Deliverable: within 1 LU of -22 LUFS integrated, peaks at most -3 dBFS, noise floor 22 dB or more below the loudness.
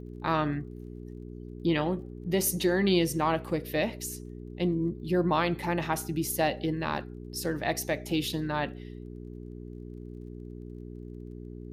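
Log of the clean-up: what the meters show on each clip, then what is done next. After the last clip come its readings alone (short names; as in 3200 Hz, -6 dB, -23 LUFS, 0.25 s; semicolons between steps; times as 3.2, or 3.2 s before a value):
ticks 23/s; hum 60 Hz; harmonics up to 420 Hz; hum level -40 dBFS; loudness -29.5 LUFS; peak -12.5 dBFS; loudness target -22.0 LUFS
-> de-click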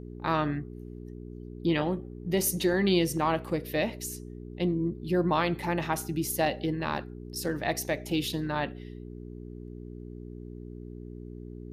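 ticks 0/s; hum 60 Hz; harmonics up to 420 Hz; hum level -40 dBFS
-> de-hum 60 Hz, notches 7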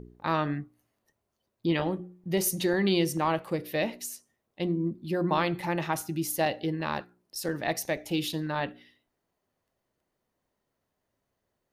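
hum none; loudness -30.0 LUFS; peak -13.0 dBFS; loudness target -22.0 LUFS
-> gain +8 dB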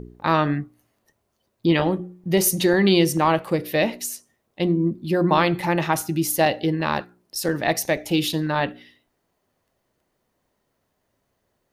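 loudness -22.0 LUFS; peak -5.0 dBFS; noise floor -74 dBFS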